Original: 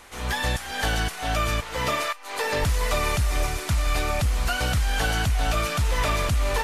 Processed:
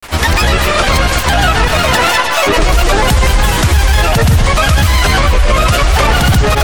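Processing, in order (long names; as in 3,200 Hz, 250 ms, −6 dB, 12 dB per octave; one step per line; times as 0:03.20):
granular cloud, pitch spread up and down by 7 semitones
bucket-brigade delay 125 ms, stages 4,096, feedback 46%, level −9 dB
boost into a limiter +21 dB
level −1 dB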